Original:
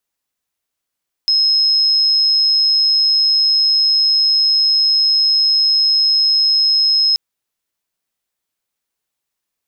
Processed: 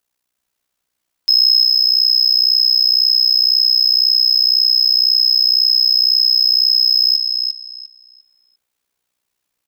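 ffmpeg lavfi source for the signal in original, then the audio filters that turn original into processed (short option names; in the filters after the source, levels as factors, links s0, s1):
-f lavfi -i "sine=f=5150:d=5.88:r=44100,volume=7.56dB"
-filter_complex "[0:a]acontrast=83,tremolo=f=62:d=0.857,asplit=2[s0][s1];[s1]adelay=350,lowpass=f=4900:p=1,volume=0.668,asplit=2[s2][s3];[s3]adelay=350,lowpass=f=4900:p=1,volume=0.3,asplit=2[s4][s5];[s5]adelay=350,lowpass=f=4900:p=1,volume=0.3,asplit=2[s6][s7];[s7]adelay=350,lowpass=f=4900:p=1,volume=0.3[s8];[s0][s2][s4][s6][s8]amix=inputs=5:normalize=0"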